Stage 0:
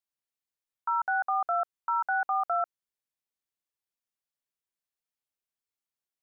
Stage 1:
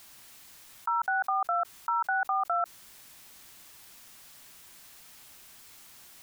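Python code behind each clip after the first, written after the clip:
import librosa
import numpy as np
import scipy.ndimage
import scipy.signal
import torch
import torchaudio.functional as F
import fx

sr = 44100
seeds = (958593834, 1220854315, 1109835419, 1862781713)

y = fx.peak_eq(x, sr, hz=480.0, db=-5.5, octaves=0.76)
y = fx.env_flatten(y, sr, amount_pct=70)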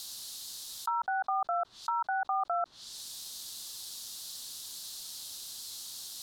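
y = fx.env_lowpass_down(x, sr, base_hz=1400.0, full_db=-27.5)
y = fx.high_shelf_res(y, sr, hz=3000.0, db=10.0, q=3.0)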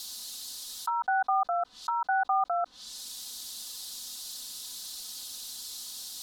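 y = x + 0.83 * np.pad(x, (int(4.0 * sr / 1000.0), 0))[:len(x)]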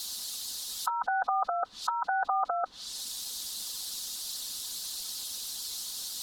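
y = fx.hpss(x, sr, part='harmonic', gain_db=-11)
y = y * 10.0 ** (8.5 / 20.0)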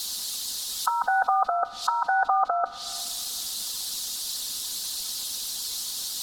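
y = fx.rev_plate(x, sr, seeds[0], rt60_s=2.5, hf_ratio=0.75, predelay_ms=0, drr_db=14.5)
y = y * 10.0 ** (5.5 / 20.0)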